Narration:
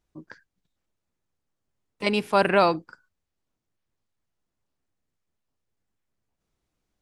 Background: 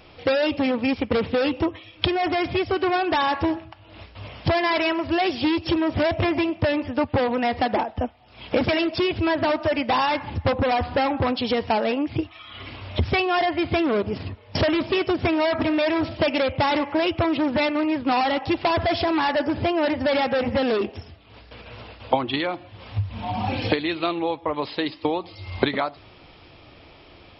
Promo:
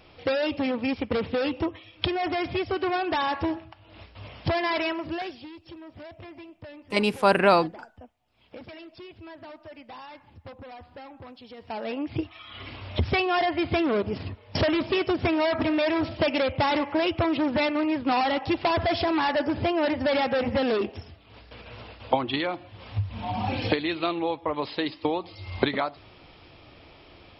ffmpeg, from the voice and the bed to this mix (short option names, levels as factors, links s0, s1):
-filter_complex "[0:a]adelay=4900,volume=1.06[s0];[1:a]volume=5.62,afade=t=out:st=4.8:d=0.67:silence=0.133352,afade=t=in:st=11.57:d=0.73:silence=0.105925[s1];[s0][s1]amix=inputs=2:normalize=0"